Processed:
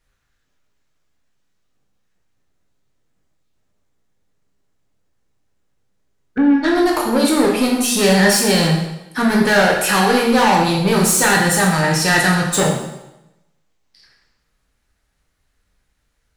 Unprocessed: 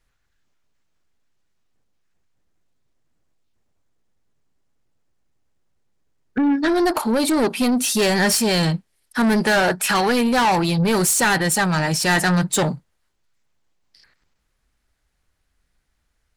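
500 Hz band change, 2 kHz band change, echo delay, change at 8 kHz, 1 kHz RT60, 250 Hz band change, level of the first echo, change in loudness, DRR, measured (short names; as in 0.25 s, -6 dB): +4.5 dB, +4.0 dB, none, +3.5 dB, 0.90 s, +3.5 dB, none, +3.5 dB, -1.5 dB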